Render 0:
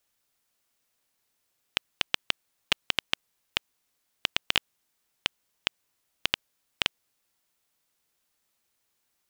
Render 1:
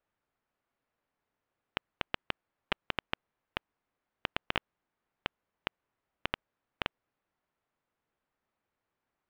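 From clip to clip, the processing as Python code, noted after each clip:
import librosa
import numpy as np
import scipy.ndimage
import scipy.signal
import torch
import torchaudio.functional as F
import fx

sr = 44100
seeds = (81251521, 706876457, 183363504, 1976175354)

y = scipy.signal.sosfilt(scipy.signal.butter(2, 1600.0, 'lowpass', fs=sr, output='sos'), x)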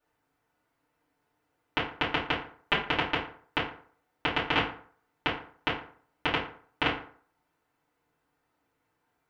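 y = fx.rev_fdn(x, sr, rt60_s=0.51, lf_ratio=0.9, hf_ratio=0.6, size_ms=20.0, drr_db=-9.0)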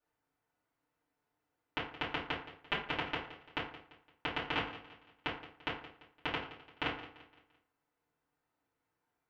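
y = fx.echo_feedback(x, sr, ms=171, feedback_pct=42, wet_db=-15)
y = y * librosa.db_to_amplitude(-8.5)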